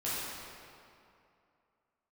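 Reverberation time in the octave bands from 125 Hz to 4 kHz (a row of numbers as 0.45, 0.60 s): 2.4, 2.6, 2.6, 2.6, 2.2, 1.7 s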